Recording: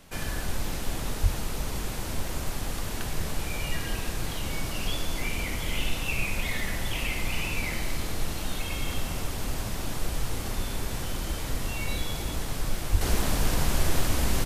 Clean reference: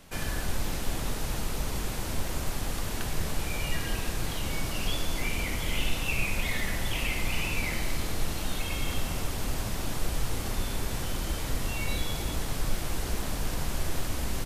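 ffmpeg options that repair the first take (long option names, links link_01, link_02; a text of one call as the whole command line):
ffmpeg -i in.wav -filter_complex "[0:a]asplit=3[link_01][link_02][link_03];[link_01]afade=type=out:start_time=1.22:duration=0.02[link_04];[link_02]highpass=frequency=140:width=0.5412,highpass=frequency=140:width=1.3066,afade=type=in:start_time=1.22:duration=0.02,afade=type=out:start_time=1.34:duration=0.02[link_05];[link_03]afade=type=in:start_time=1.34:duration=0.02[link_06];[link_04][link_05][link_06]amix=inputs=3:normalize=0,asplit=3[link_07][link_08][link_09];[link_07]afade=type=out:start_time=12.91:duration=0.02[link_10];[link_08]highpass=frequency=140:width=0.5412,highpass=frequency=140:width=1.3066,afade=type=in:start_time=12.91:duration=0.02,afade=type=out:start_time=13.03:duration=0.02[link_11];[link_09]afade=type=in:start_time=13.03:duration=0.02[link_12];[link_10][link_11][link_12]amix=inputs=3:normalize=0,asetnsamples=nb_out_samples=441:pad=0,asendcmd='13.01 volume volume -6dB',volume=0dB" out.wav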